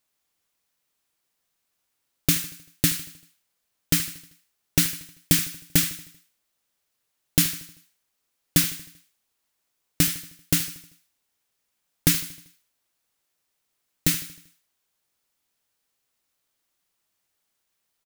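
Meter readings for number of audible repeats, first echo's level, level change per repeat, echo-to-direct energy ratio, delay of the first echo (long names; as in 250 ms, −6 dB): 4, −17.0 dB, −5.5 dB, −15.5 dB, 78 ms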